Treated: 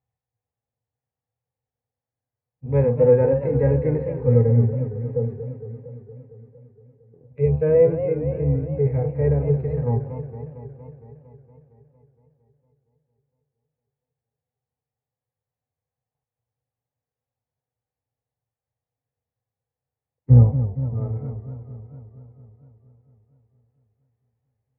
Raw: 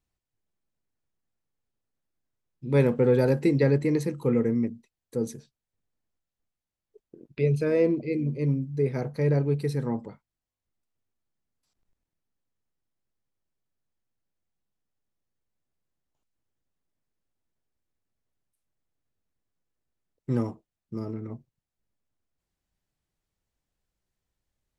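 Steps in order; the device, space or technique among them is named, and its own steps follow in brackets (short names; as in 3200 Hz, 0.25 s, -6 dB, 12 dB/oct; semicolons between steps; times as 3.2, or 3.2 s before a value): 20.3–20.94 RIAA curve playback; sub-octave bass pedal (octaver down 1 oct, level -3 dB; speaker cabinet 75–2100 Hz, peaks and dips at 120 Hz +8 dB, 190 Hz -9 dB, 340 Hz -10 dB, 490 Hz +7 dB, 780 Hz +7 dB, 1400 Hz -6 dB); harmonic-percussive split percussive -15 dB; warbling echo 0.23 s, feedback 69%, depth 168 cents, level -11 dB; gain +2.5 dB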